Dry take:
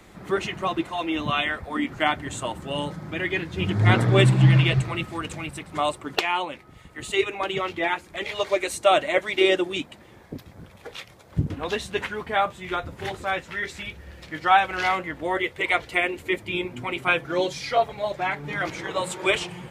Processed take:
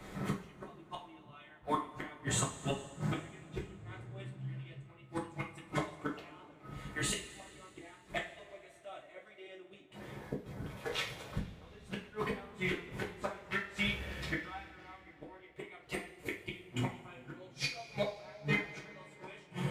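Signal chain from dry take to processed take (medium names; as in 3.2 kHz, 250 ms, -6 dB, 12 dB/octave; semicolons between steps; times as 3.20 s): inverted gate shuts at -22 dBFS, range -32 dB; two-slope reverb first 0.33 s, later 3.8 s, from -21 dB, DRR -2.5 dB; tape noise reduction on one side only decoder only; trim -2 dB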